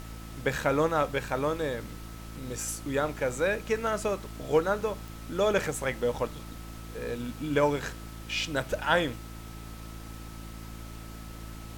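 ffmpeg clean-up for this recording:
-af "adeclick=t=4,bandreject=f=55.5:t=h:w=4,bandreject=f=111:t=h:w=4,bandreject=f=166.5:t=h:w=4,bandreject=f=222:t=h:w=4,bandreject=f=277.5:t=h:w=4,bandreject=f=333:t=h:w=4,bandreject=f=1.3k:w=30,afftdn=nr=30:nf=-42"

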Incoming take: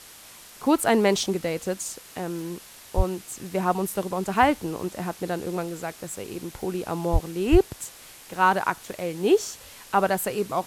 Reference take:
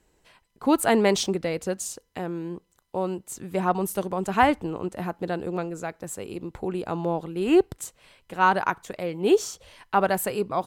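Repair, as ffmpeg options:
-filter_complex "[0:a]adeclick=t=4,asplit=3[a][b][c];[a]afade=t=out:st=2.96:d=0.02[d];[b]highpass=f=140:w=0.5412,highpass=f=140:w=1.3066,afade=t=in:st=2.96:d=0.02,afade=t=out:st=3.08:d=0.02[e];[c]afade=t=in:st=3.08:d=0.02[f];[d][e][f]amix=inputs=3:normalize=0,asplit=3[g][h][i];[g]afade=t=out:st=7.12:d=0.02[j];[h]highpass=f=140:w=0.5412,highpass=f=140:w=1.3066,afade=t=in:st=7.12:d=0.02,afade=t=out:st=7.24:d=0.02[k];[i]afade=t=in:st=7.24:d=0.02[l];[j][k][l]amix=inputs=3:normalize=0,asplit=3[m][n][o];[m]afade=t=out:st=7.51:d=0.02[p];[n]highpass=f=140:w=0.5412,highpass=f=140:w=1.3066,afade=t=in:st=7.51:d=0.02,afade=t=out:st=7.63:d=0.02[q];[o]afade=t=in:st=7.63:d=0.02[r];[p][q][r]amix=inputs=3:normalize=0,afwtdn=0.0056"

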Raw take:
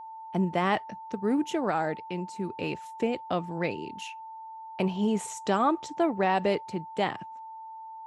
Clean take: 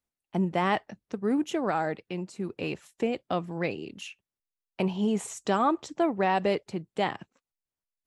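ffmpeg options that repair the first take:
-af "bandreject=f=890:w=30"

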